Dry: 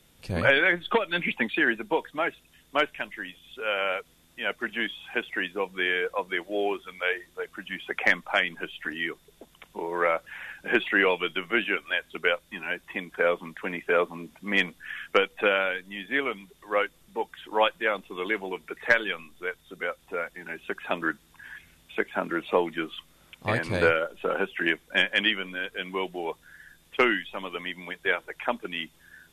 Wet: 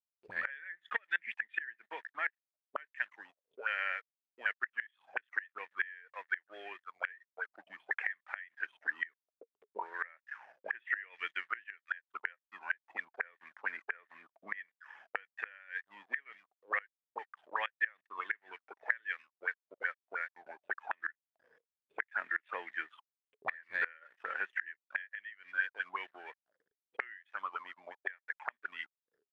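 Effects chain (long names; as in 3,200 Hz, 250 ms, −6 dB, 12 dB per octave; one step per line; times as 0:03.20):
dead-zone distortion −46 dBFS
envelope filter 370–1,800 Hz, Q 11, up, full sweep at −28.5 dBFS
gate with flip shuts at −28 dBFS, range −24 dB
level +8.5 dB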